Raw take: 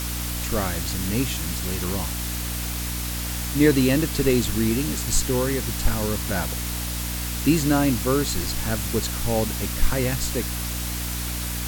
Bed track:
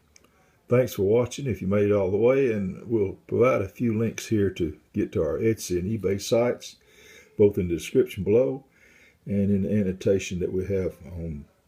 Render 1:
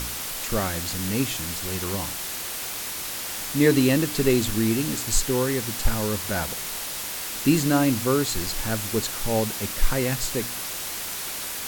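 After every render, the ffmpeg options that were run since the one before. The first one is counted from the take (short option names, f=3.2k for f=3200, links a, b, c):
-af "bandreject=f=60:t=h:w=4,bandreject=f=120:t=h:w=4,bandreject=f=180:t=h:w=4,bandreject=f=240:t=h:w=4,bandreject=f=300:t=h:w=4"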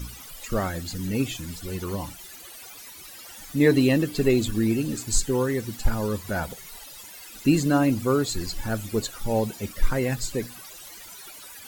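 -af "afftdn=nr=17:nf=-32"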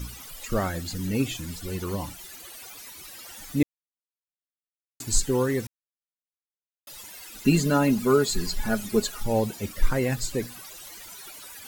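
-filter_complex "[0:a]asettb=1/sr,asplit=3[a][b][c];[a]atrim=end=7.454[d];[b]atrim=start=7.45:end=9.23,asetpts=PTS-STARTPTS,afade=t=in:d=0.004:c=qsin,afade=t=out:st=1.776:d=0.004:c=qsin,aecho=1:1:4.8:0.73,atrim=end_sample=78498[e];[c]atrim=start=9.226[f];[d][e]acrossfade=d=0.004:c1=hsin:c2=qsin[g];[g][f]acrossfade=d=0.004:c1=qsin:c2=hsin,asplit=5[h][i][j][k][l];[h]atrim=end=3.63,asetpts=PTS-STARTPTS,afade=t=out:st=3.626:d=0.004:c=hsin[m];[i]atrim=start=3.63:end=5,asetpts=PTS-STARTPTS,volume=0[n];[j]atrim=start=5:end=5.67,asetpts=PTS-STARTPTS,afade=t=in:d=0.004:c=hsin,afade=t=out:st=0.666:d=0.004:c=hsin[o];[k]atrim=start=5.67:end=6.87,asetpts=PTS-STARTPTS,volume=0[p];[l]atrim=start=6.87,asetpts=PTS-STARTPTS,afade=t=in:d=0.004:c=hsin[q];[m][n][o][p][q]concat=n=5:v=0:a=1"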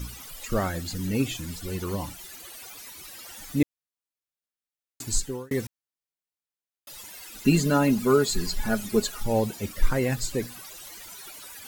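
-filter_complex "[0:a]asplit=2[a][b];[a]atrim=end=5.51,asetpts=PTS-STARTPTS,afade=t=out:st=5.02:d=0.49[c];[b]atrim=start=5.51,asetpts=PTS-STARTPTS,afade=t=in:d=0.004:c=hsin[d];[c][d]concat=n=2:v=0:a=1"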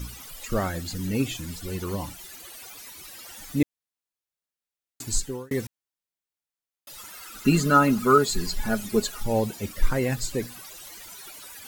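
-filter_complex "[0:a]asettb=1/sr,asplit=3[a][b][c];[a]atrim=end=6.984[d];[b]atrim=start=6.98:end=8.18,asetpts=PTS-STARTPTS,afade=t=in:d=0.004:c=qsin,afade=t=out:st=1.196:d=0.004:c=qsin,equalizer=f=1.3k:t=o:w=0.31:g=14[e];[c]atrim=start=8.176[f];[d][e]acrossfade=d=0.004:c1=hsin:c2=qsin[g];[g][f]acrossfade=d=0.004:c1=qsin:c2=hsin"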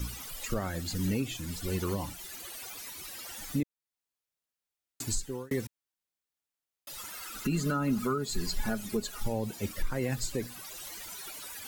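-filter_complex "[0:a]acrossover=split=270[a][b];[b]acompressor=threshold=-24dB:ratio=6[c];[a][c]amix=inputs=2:normalize=0,alimiter=limit=-20.5dB:level=0:latency=1:release=440"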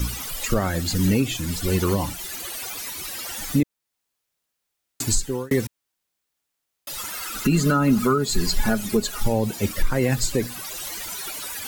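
-af "volume=10.5dB"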